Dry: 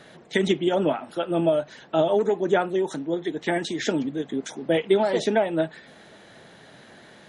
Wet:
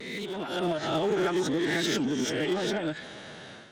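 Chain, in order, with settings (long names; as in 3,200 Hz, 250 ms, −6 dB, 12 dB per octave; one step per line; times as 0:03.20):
peak hold with a rise ahead of every peak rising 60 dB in 1.01 s
source passing by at 0:02.07, 19 m/s, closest 20 metres
downward compressor 3 to 1, threshold −39 dBFS, peak gain reduction 18.5 dB
dynamic equaliser 610 Hz, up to −8 dB, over −51 dBFS, Q 1.6
low-pass filter 5,800 Hz 12 dB per octave
high-shelf EQ 4,600 Hz +10 dB
phase-vocoder stretch with locked phases 0.51×
pitch vibrato 0.72 Hz 27 cents
harmonic generator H 5 −21 dB, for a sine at −33.5 dBFS
automatic gain control gain up to 10 dB
level +3 dB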